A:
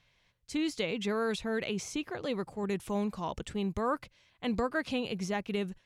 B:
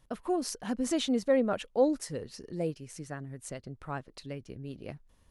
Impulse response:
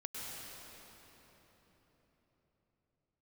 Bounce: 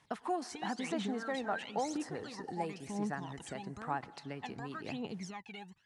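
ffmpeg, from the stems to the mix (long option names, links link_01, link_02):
-filter_complex "[0:a]acompressor=threshold=-35dB:ratio=6,aphaser=in_gain=1:out_gain=1:delay=1.4:decay=0.8:speed=0.99:type=triangular,volume=-8dB[link_01];[1:a]acrossover=split=630|1700[link_02][link_03][link_04];[link_02]acompressor=threshold=-41dB:ratio=4[link_05];[link_03]acompressor=threshold=-38dB:ratio=4[link_06];[link_04]acompressor=threshold=-52dB:ratio=4[link_07];[link_05][link_06][link_07]amix=inputs=3:normalize=0,volume=0.5dB,asplit=2[link_08][link_09];[link_09]volume=-17dB[link_10];[2:a]atrim=start_sample=2205[link_11];[link_10][link_11]afir=irnorm=-1:irlink=0[link_12];[link_01][link_08][link_12]amix=inputs=3:normalize=0,highpass=150,equalizer=frequency=540:width_type=q:width=4:gain=-7,equalizer=frequency=820:width_type=q:width=4:gain=9,equalizer=frequency=1800:width_type=q:width=4:gain=4,lowpass=frequency=9300:width=0.5412,lowpass=frequency=9300:width=1.3066"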